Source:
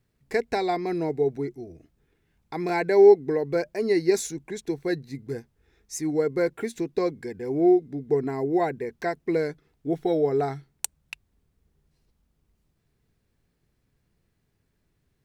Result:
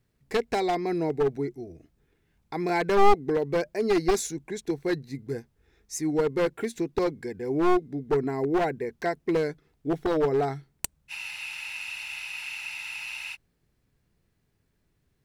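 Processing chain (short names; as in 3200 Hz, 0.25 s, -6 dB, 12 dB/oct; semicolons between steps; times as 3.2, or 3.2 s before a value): one-sided fold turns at -19 dBFS; spectral freeze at 11.12, 2.23 s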